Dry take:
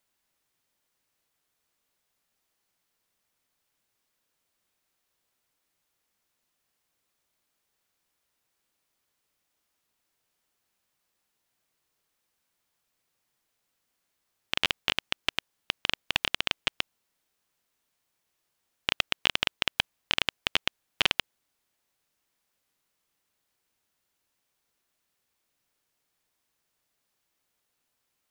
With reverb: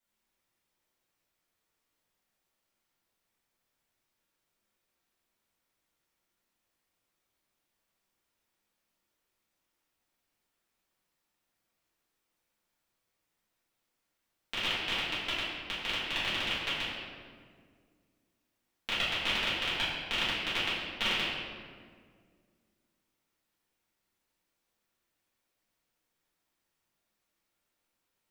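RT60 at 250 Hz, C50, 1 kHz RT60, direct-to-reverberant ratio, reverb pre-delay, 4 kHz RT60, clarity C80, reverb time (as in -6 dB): 2.6 s, -0.5 dB, 1.7 s, -12.0 dB, 4 ms, 1.1 s, 1.5 dB, 1.9 s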